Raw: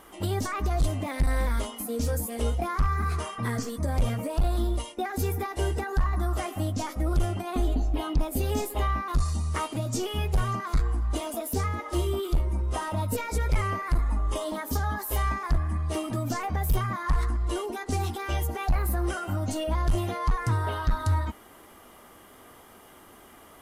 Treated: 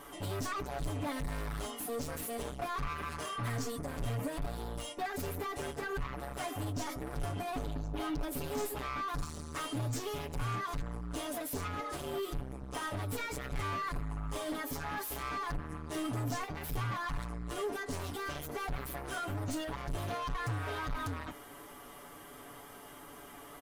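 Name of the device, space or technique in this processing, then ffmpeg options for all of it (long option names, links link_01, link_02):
saturation between pre-emphasis and de-emphasis: -af "highshelf=frequency=5100:gain=6,asoftclip=type=tanh:threshold=-34dB,highshelf=frequency=5100:gain=-6,aecho=1:1:7:0.79,volume=-1dB"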